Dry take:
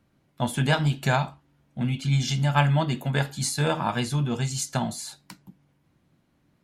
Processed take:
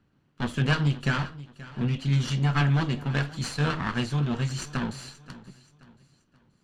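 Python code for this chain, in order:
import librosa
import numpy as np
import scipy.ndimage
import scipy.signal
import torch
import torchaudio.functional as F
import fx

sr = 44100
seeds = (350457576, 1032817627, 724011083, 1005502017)

y = fx.lower_of_two(x, sr, delay_ms=0.67)
y = fx.air_absorb(y, sr, metres=82.0)
y = fx.echo_feedback(y, sr, ms=529, feedback_pct=39, wet_db=-18)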